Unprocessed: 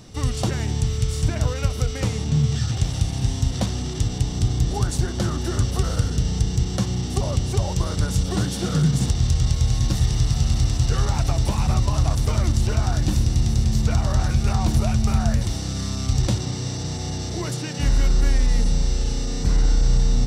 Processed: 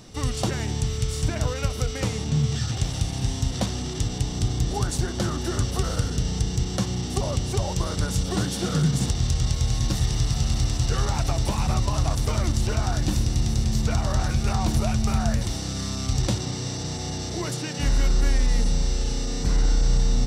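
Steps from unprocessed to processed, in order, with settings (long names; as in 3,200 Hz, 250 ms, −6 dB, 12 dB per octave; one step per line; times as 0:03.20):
parametric band 81 Hz −4.5 dB 2.3 octaves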